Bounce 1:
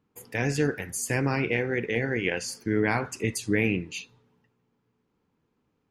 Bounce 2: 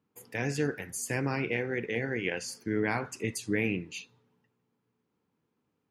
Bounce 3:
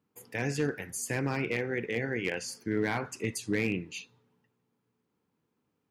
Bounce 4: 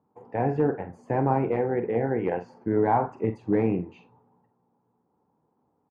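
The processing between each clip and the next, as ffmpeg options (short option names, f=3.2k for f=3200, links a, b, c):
-af "highpass=94,volume=-4.5dB"
-af "asoftclip=type=hard:threshold=-20.5dB"
-filter_complex "[0:a]lowpass=f=840:t=q:w=3.4,asplit=2[a][b];[b]adelay=45,volume=-11dB[c];[a][c]amix=inputs=2:normalize=0,volume=5dB"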